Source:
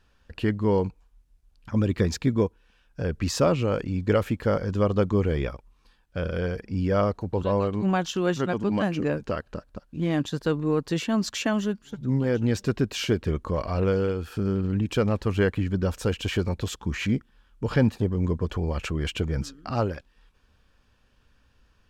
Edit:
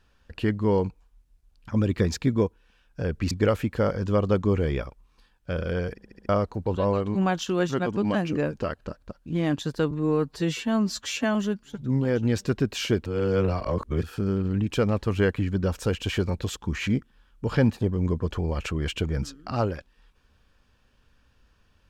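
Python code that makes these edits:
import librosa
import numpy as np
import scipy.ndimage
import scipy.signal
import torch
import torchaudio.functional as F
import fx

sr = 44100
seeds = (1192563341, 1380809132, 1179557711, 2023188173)

y = fx.edit(x, sr, fx.cut(start_s=3.31, length_s=0.67),
    fx.stutter_over(start_s=6.61, slice_s=0.07, count=5),
    fx.stretch_span(start_s=10.58, length_s=0.96, factor=1.5),
    fx.reverse_span(start_s=13.25, length_s=0.97), tone=tone)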